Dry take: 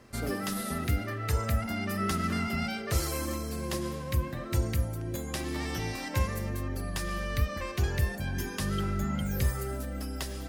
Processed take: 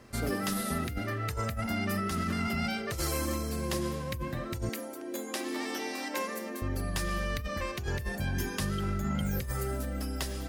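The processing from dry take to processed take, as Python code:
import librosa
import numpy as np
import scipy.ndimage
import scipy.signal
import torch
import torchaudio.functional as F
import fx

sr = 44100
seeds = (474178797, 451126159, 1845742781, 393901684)

y = fx.ellip_highpass(x, sr, hz=230.0, order=4, stop_db=40, at=(4.69, 6.62))
y = fx.over_compress(y, sr, threshold_db=-31.0, ratio=-1.0)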